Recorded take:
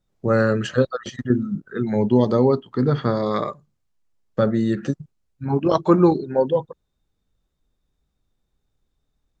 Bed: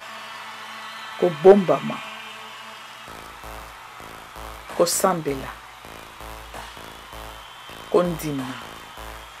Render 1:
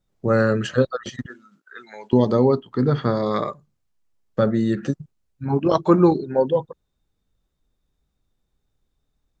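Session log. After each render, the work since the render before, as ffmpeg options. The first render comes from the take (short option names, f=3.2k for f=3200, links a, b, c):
-filter_complex "[0:a]asettb=1/sr,asplit=3[a][b][c];[a]atrim=end=1.264[d];[b]atrim=start=1.26:end=2.13,asetpts=PTS-STARTPTS,afade=t=in:d=0.004:c=qsin,afade=t=out:st=0.866:d=0.004:c=qsin,highpass=1.3k[e];[c]atrim=start=2.126[f];[d][e]acrossfade=d=0.004:c1=hsin:c2=qsin[g];[g][f]acrossfade=d=0.004:c1=qsin:c2=hsin"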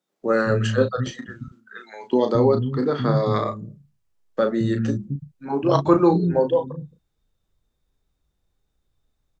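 -filter_complex "[0:a]asplit=2[a][b];[b]adelay=35,volume=-7.5dB[c];[a][c]amix=inputs=2:normalize=0,acrossover=split=220[d][e];[d]adelay=220[f];[f][e]amix=inputs=2:normalize=0"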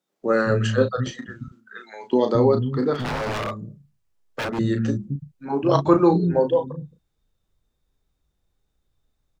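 -filter_complex "[0:a]asettb=1/sr,asplit=3[a][b][c];[a]atrim=end=2.944[d];[b]atrim=start=2.94:end=4.59,asetpts=PTS-STARTPTS,afade=t=in:d=0.004:c=qsin,afade=t=out:st=1.646:d=0.004:c=qsin,aeval=exprs='0.0841*(abs(mod(val(0)/0.0841+3,4)-2)-1)':c=same[e];[c]atrim=start=4.586[f];[d][e]acrossfade=d=0.004:c1=hsin:c2=qsin[g];[g][f]acrossfade=d=0.004:c1=qsin:c2=hsin"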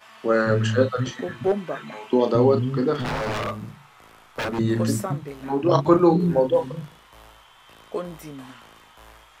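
-filter_complex "[1:a]volume=-11dB[a];[0:a][a]amix=inputs=2:normalize=0"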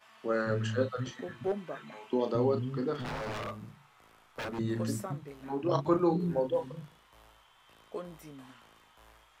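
-af "volume=-10.5dB"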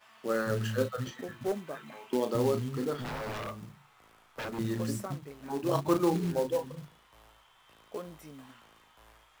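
-af "acrusher=bits=4:mode=log:mix=0:aa=0.000001"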